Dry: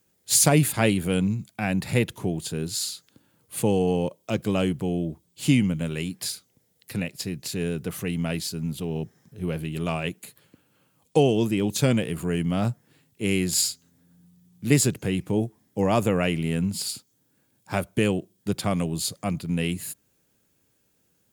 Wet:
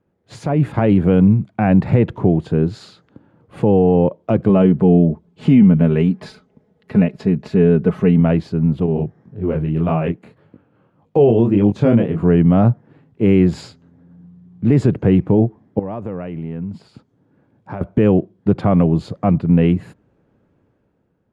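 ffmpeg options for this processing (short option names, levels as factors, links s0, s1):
-filter_complex "[0:a]asettb=1/sr,asplit=3[s0][s1][s2];[s0]atrim=end=4.494[s3];[s1]atrim=start=4.49:end=8.2,asetpts=PTS-STARTPTS,afade=t=in:d=0.004:c=qsin,afade=t=out:st=3.706:d=0.004:c=qsin,aecho=1:1:4.7:0.62,atrim=end_sample=163611[s4];[s2]atrim=start=8.196[s5];[s3][s4]acrossfade=d=0.004:c1=hsin:c2=qsin[s6];[s6][s5]acrossfade=d=0.004:c1=qsin:c2=hsin,asettb=1/sr,asplit=3[s7][s8][s9];[s7]atrim=end=8.864[s10];[s8]atrim=start=8.86:end=12.23,asetpts=PTS-STARTPTS,afade=t=in:d=0.004:c=qsin,afade=t=out:st=3.366:d=0.004:c=qsin,flanger=delay=19:depth=7.6:speed=1.8[s11];[s9]atrim=start=12.226[s12];[s10][s11]acrossfade=d=0.004:c1=hsin:c2=qsin[s13];[s13][s12]acrossfade=d=0.004:c1=qsin:c2=hsin,asettb=1/sr,asplit=3[s14][s15][s16];[s14]atrim=end=15.794[s17];[s15]atrim=start=15.79:end=17.81,asetpts=PTS-STARTPTS,afade=t=in:d=0.004:c=qsin,afade=t=out:st=2.016:d=0.004:c=qsin,acompressor=threshold=0.0112:ratio=4:attack=3.2:release=140:knee=1:detection=peak[s18];[s16]atrim=start=17.806[s19];[s17][s18]acrossfade=d=0.004:c1=hsin:c2=qsin[s20];[s20][s19]acrossfade=d=0.004:c1=qsin:c2=hsin,lowpass=1100,alimiter=limit=0.133:level=0:latency=1:release=49,dynaudnorm=f=120:g=11:m=2.24,volume=2.11"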